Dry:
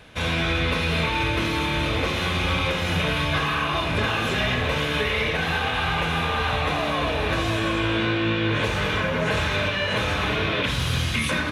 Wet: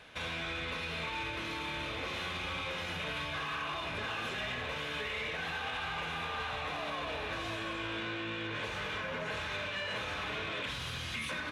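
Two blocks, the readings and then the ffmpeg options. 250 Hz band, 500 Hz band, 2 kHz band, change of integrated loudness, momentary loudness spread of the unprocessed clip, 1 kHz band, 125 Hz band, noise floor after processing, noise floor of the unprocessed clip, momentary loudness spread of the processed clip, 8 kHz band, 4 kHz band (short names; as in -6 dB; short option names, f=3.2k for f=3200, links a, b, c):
-17.5 dB, -15.0 dB, -12.0 dB, -13.5 dB, 1 LU, -12.5 dB, -19.5 dB, -39 dBFS, -26 dBFS, 1 LU, -13.0 dB, -12.0 dB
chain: -filter_complex "[0:a]alimiter=limit=-21dB:level=0:latency=1:release=256,asplit=2[a][b];[b]highpass=f=720:p=1,volume=8dB,asoftclip=type=tanh:threshold=-21dB[c];[a][c]amix=inputs=2:normalize=0,lowpass=f=5.9k:p=1,volume=-6dB,volume=-8dB"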